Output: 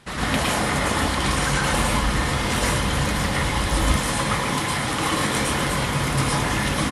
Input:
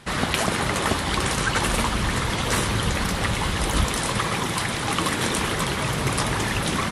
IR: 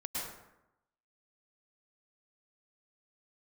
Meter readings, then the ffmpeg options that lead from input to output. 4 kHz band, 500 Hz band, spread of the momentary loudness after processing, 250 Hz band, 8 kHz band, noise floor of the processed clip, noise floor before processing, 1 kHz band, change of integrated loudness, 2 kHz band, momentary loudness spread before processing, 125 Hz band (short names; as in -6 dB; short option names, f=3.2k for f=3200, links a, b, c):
+0.5 dB, +1.0 dB, 2 LU, +2.0 dB, +1.0 dB, -25 dBFS, -27 dBFS, +2.0 dB, +1.5 dB, +1.5 dB, 2 LU, +2.0 dB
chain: -filter_complex "[0:a]aecho=1:1:596:0.0708[a];[1:a]atrim=start_sample=2205,afade=t=out:st=0.22:d=0.01,atrim=end_sample=10143[b];[a][b]afir=irnorm=-1:irlink=0"